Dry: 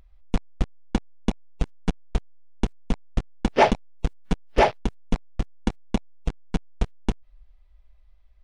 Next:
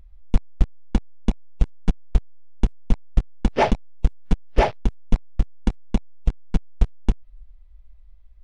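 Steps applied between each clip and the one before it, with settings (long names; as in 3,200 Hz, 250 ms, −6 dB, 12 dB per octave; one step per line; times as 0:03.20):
low-shelf EQ 140 Hz +10.5 dB
level −2.5 dB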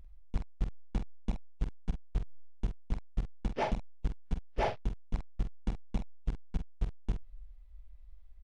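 reversed playback
downward compressor 6 to 1, threshold −24 dBFS, peak gain reduction 15.5 dB
reversed playback
double-tracking delay 46 ms −8 dB
level −4.5 dB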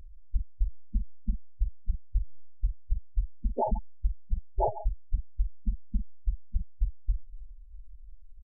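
far-end echo of a speakerphone 140 ms, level −10 dB
gate on every frequency bin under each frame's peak −10 dB strong
level +5.5 dB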